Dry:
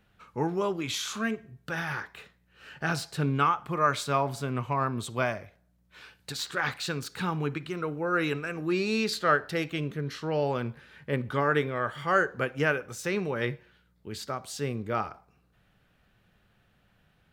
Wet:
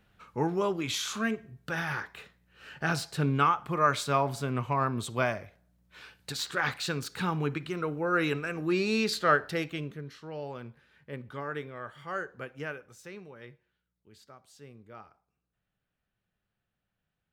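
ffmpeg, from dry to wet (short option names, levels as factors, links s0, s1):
-af "afade=t=out:st=9.41:d=0.72:silence=0.281838,afade=t=out:st=12.58:d=0.8:silence=0.421697"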